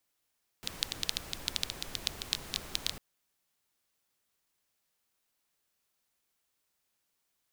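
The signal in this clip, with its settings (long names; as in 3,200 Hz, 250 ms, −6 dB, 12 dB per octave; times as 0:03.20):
rain-like ticks over hiss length 2.35 s, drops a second 9.2, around 3,800 Hz, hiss −6.5 dB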